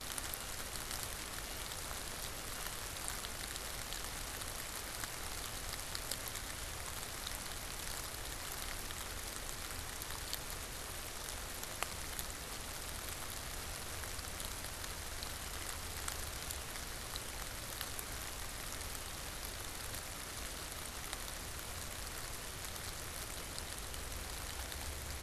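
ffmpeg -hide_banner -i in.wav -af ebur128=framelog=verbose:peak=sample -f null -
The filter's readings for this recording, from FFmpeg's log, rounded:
Integrated loudness:
  I:         -42.5 LUFS
  Threshold: -52.5 LUFS
Loudness range:
  LRA:         1.4 LU
  Threshold: -62.5 LUFS
  LRA low:   -43.3 LUFS
  LRA high:  -41.8 LUFS
Sample peak:
  Peak:      -17.3 dBFS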